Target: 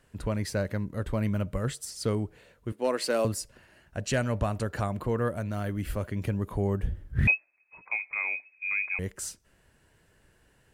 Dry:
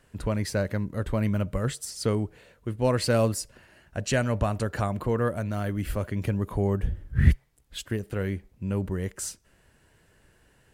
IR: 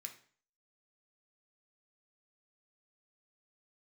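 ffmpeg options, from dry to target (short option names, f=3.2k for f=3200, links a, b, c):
-filter_complex "[0:a]asettb=1/sr,asplit=3[a][b][c];[a]atrim=end=2.724[d];[b]atrim=start=2.72:end=3.25,asetpts=PTS-STARTPTS,afade=t=in:d=0.004:c=qsin,afade=t=out:st=0.526:d=0.004:c=qsin,highpass=f=260:w=0.5412,highpass=f=260:w=1.3066[e];[c]atrim=start=3.246[f];[d][e]acrossfade=d=0.004:c1=hsin:c2=qsin[g];[g][f]acrossfade=d=0.004:c1=qsin:c2=hsin,asoftclip=type=hard:threshold=-14.5dB,asettb=1/sr,asplit=3[h][i][j];[h]atrim=end=7.274[k];[i]atrim=start=7.27:end=8.99,asetpts=PTS-STARTPTS,afade=t=in:d=0.004:c=qsin,afade=t=out:st=1.716:d=0.004:c=qsin,lowpass=f=2.2k:t=q:w=0.5098,lowpass=f=2.2k:t=q:w=0.6013,lowpass=f=2.2k:t=q:w=0.9,lowpass=f=2.2k:t=q:w=2.563,afreqshift=-2600[l];[j]atrim=start=8.986[m];[k][l]acrossfade=d=0.004:c1=hsin:c2=qsin[n];[n][m]acrossfade=d=0.004:c1=qsin:c2=hsin,volume=-2.5dB"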